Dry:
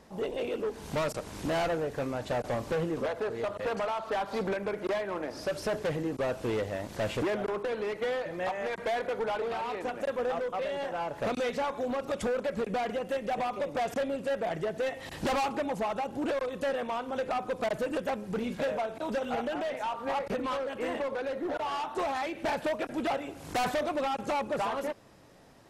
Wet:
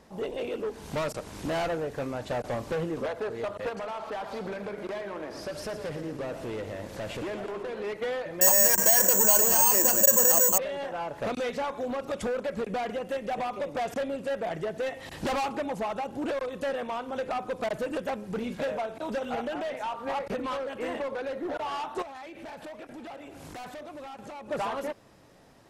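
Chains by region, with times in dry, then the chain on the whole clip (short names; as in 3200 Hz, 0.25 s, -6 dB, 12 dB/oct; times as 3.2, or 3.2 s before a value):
3.69–7.84 compressor 3:1, threshold -34 dBFS + warbling echo 0.116 s, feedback 67%, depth 109 cents, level -10.5 dB
8.41–10.58 ripple EQ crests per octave 1.3, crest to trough 11 dB + careless resampling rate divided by 6×, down filtered, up zero stuff + fast leveller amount 50%
22.02–24.51 compressor 12:1, threshold -40 dBFS + echo 0.509 s -14 dB
whole clip: dry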